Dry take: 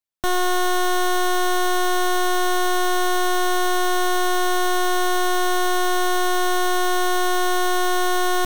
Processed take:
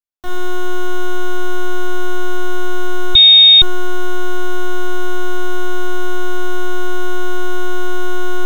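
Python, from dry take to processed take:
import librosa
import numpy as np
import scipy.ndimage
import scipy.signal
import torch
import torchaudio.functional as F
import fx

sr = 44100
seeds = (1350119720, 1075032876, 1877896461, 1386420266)

y = fx.echo_alternate(x, sr, ms=124, hz=870.0, feedback_pct=78, wet_db=-12.5)
y = fx.room_shoebox(y, sr, seeds[0], volume_m3=470.0, walls='furnished', distance_m=3.4)
y = fx.freq_invert(y, sr, carrier_hz=3700, at=(3.15, 3.62))
y = y * librosa.db_to_amplitude(-12.0)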